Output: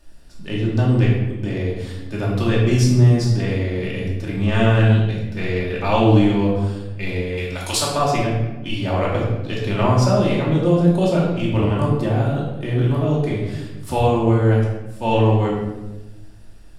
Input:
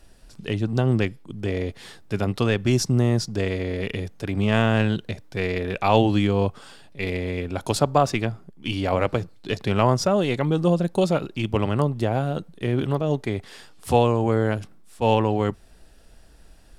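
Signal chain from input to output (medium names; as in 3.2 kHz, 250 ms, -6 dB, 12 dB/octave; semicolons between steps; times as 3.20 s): 7.37–7.97 s: tilt shelf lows -9.5 dB; simulated room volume 510 m³, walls mixed, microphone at 2.6 m; trim -4.5 dB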